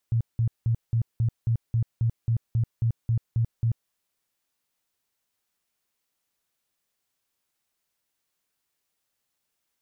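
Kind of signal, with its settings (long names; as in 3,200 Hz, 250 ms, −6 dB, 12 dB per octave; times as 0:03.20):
tone bursts 115 Hz, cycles 10, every 0.27 s, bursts 14, −19.5 dBFS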